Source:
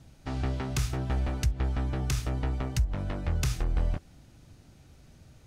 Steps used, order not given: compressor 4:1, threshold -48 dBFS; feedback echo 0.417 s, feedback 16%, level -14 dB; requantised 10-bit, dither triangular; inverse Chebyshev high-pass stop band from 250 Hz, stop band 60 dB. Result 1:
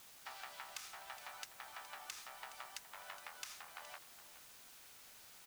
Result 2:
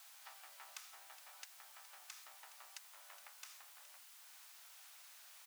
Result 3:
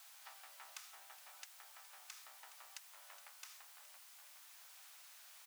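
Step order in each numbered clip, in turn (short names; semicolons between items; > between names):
inverse Chebyshev high-pass > compressor > feedback echo > requantised; compressor > feedback echo > requantised > inverse Chebyshev high-pass; feedback echo > compressor > requantised > inverse Chebyshev high-pass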